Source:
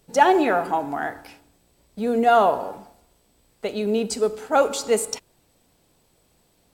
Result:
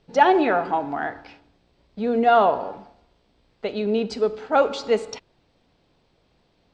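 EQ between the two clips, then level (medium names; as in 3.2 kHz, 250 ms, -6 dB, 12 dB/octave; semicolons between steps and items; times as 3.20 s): low-pass 4.7 kHz 24 dB/octave; 0.0 dB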